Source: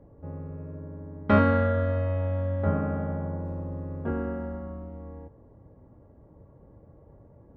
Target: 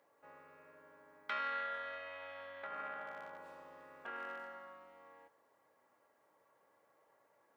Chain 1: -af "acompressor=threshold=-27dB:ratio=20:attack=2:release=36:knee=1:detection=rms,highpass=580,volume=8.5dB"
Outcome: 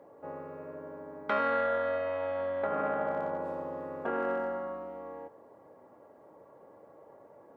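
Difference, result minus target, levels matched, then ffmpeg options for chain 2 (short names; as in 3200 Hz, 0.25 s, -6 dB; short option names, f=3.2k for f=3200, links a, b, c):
500 Hz band +9.0 dB
-af "acompressor=threshold=-27dB:ratio=20:attack=2:release=36:knee=1:detection=rms,highpass=2.1k,volume=8.5dB"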